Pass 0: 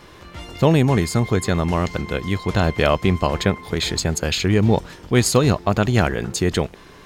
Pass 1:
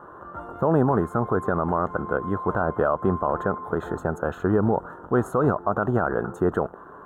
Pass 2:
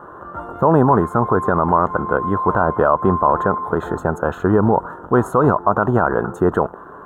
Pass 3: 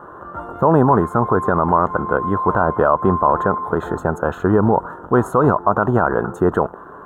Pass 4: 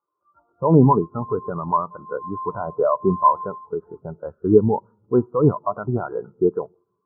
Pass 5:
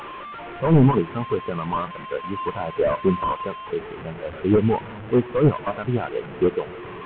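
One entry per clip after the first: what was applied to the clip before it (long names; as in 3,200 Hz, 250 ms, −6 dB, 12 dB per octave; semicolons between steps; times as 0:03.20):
elliptic low-pass filter 1,400 Hz, stop band 40 dB; spectral tilt +4 dB per octave; brickwall limiter −16.5 dBFS, peak gain reduction 9.5 dB; level +6 dB
dynamic equaliser 980 Hz, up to +7 dB, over −41 dBFS, Q 4; level +6 dB
no processing that can be heard
on a send at −14 dB: convolution reverb RT60 1.6 s, pre-delay 7 ms; on the sum: every bin expanded away from the loudest bin 2.5 to 1
linear delta modulator 16 kbit/s, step −29.5 dBFS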